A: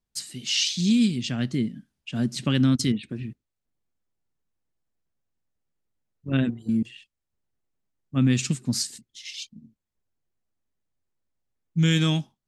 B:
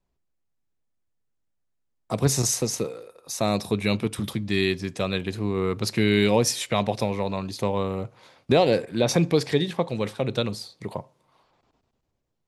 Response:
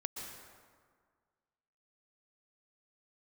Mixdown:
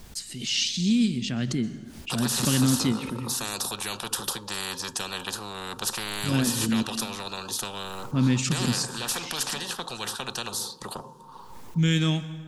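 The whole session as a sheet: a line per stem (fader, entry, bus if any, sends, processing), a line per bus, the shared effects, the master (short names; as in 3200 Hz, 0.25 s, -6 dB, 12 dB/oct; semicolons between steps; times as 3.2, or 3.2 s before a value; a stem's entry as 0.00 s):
-4.0 dB, 0.00 s, send -8.5 dB, backwards sustainer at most 81 dB/s
-4.0 dB, 0.00 s, no send, fixed phaser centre 430 Hz, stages 8; small resonant body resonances 260/910 Hz, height 12 dB, ringing for 45 ms; spectral compressor 10:1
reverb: on, RT60 1.8 s, pre-delay 0.113 s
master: dry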